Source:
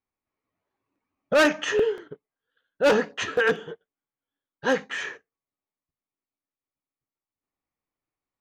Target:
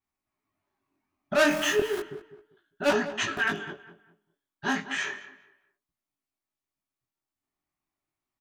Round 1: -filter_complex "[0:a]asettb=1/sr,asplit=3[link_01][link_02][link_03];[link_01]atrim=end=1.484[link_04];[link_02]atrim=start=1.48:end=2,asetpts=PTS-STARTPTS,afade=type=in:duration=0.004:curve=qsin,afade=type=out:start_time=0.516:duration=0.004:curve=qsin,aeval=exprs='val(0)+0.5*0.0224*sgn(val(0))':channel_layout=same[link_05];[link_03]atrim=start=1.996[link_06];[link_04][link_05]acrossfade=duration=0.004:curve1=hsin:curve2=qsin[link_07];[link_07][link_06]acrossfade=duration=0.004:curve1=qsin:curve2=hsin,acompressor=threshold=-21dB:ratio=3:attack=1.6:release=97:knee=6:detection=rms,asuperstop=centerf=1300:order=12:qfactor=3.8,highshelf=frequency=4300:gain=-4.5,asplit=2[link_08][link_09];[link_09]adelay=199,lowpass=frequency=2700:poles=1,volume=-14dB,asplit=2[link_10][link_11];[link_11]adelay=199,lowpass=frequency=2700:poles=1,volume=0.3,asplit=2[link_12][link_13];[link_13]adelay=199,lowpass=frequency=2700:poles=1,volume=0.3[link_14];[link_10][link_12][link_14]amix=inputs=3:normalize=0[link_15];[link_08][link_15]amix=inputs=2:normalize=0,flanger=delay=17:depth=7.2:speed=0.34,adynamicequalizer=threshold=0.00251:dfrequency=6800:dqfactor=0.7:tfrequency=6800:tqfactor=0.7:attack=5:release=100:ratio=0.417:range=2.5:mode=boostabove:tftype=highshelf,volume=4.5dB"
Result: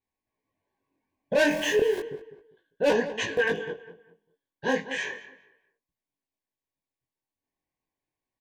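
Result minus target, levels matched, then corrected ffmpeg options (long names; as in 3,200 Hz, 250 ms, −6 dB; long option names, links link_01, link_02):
8,000 Hz band −4.0 dB; 1,000 Hz band −3.5 dB
-filter_complex "[0:a]asettb=1/sr,asplit=3[link_01][link_02][link_03];[link_01]atrim=end=1.484[link_04];[link_02]atrim=start=1.48:end=2,asetpts=PTS-STARTPTS,afade=type=in:duration=0.004:curve=qsin,afade=type=out:start_time=0.516:duration=0.004:curve=qsin,aeval=exprs='val(0)+0.5*0.0224*sgn(val(0))':channel_layout=same[link_05];[link_03]atrim=start=1.996[link_06];[link_04][link_05]acrossfade=duration=0.004:curve1=hsin:curve2=qsin[link_07];[link_07][link_06]acrossfade=duration=0.004:curve1=qsin:curve2=hsin,acompressor=threshold=-21dB:ratio=3:attack=1.6:release=97:knee=6:detection=rms,asuperstop=centerf=490:order=12:qfactor=3.8,asplit=2[link_08][link_09];[link_09]adelay=199,lowpass=frequency=2700:poles=1,volume=-14dB,asplit=2[link_10][link_11];[link_11]adelay=199,lowpass=frequency=2700:poles=1,volume=0.3,asplit=2[link_12][link_13];[link_13]adelay=199,lowpass=frequency=2700:poles=1,volume=0.3[link_14];[link_10][link_12][link_14]amix=inputs=3:normalize=0[link_15];[link_08][link_15]amix=inputs=2:normalize=0,flanger=delay=17:depth=7.2:speed=0.34,adynamicequalizer=threshold=0.00251:dfrequency=6800:dqfactor=0.7:tfrequency=6800:tqfactor=0.7:attack=5:release=100:ratio=0.417:range=2.5:mode=boostabove:tftype=highshelf,volume=4.5dB"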